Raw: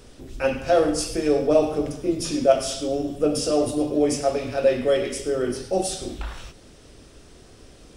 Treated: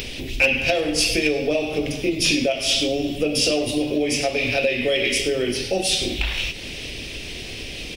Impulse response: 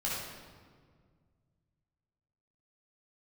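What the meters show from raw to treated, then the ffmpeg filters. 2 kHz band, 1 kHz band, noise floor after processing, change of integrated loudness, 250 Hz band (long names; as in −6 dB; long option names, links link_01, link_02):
+13.5 dB, −3.5 dB, −34 dBFS, +2.0 dB, +0.5 dB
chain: -filter_complex "[0:a]asplit=2[link_01][link_02];[link_02]acompressor=mode=upward:threshold=-24dB:ratio=2.5,volume=-2dB[link_03];[link_01][link_03]amix=inputs=2:normalize=0,equalizer=frequency=8100:width_type=o:width=1.1:gain=-12,acompressor=threshold=-18dB:ratio=6,highshelf=frequency=1800:width_type=q:width=3:gain=10.5,asoftclip=type=hard:threshold=-9dB,asplit=2[link_04][link_05];[link_05]adelay=350,highpass=300,lowpass=3400,asoftclip=type=hard:threshold=-18dB,volume=-19dB[link_06];[link_04][link_06]amix=inputs=2:normalize=0"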